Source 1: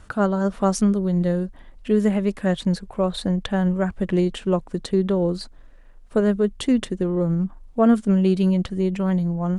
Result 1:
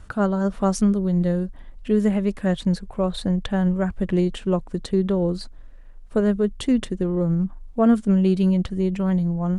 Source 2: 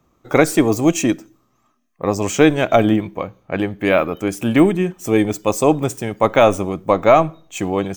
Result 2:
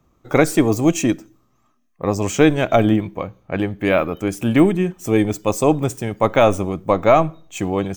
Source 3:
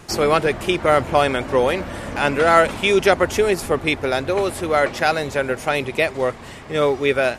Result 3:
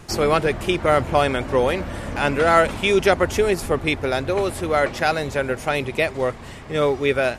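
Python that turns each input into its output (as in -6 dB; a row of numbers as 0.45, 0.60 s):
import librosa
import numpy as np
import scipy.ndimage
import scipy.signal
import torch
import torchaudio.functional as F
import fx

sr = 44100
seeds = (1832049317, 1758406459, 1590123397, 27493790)

y = fx.low_shelf(x, sr, hz=130.0, db=7.0)
y = F.gain(torch.from_numpy(y), -2.0).numpy()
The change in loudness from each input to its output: -0.5, -1.0, -1.5 LU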